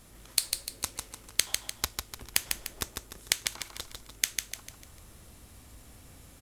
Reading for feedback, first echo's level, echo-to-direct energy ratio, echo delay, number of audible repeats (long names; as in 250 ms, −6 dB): 42%, −5.0 dB, −4.0 dB, 149 ms, 4